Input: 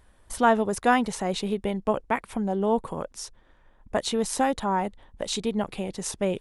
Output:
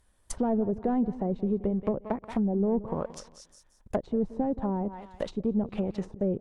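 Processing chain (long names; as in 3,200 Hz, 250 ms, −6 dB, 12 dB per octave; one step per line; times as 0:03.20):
leveller curve on the samples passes 2
bass and treble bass +2 dB, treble +9 dB
on a send: repeating echo 176 ms, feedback 29%, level −16.5 dB
on the sum: treble cut that deepens with the level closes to 450 Hz, closed at −15.5 dBFS
level −7 dB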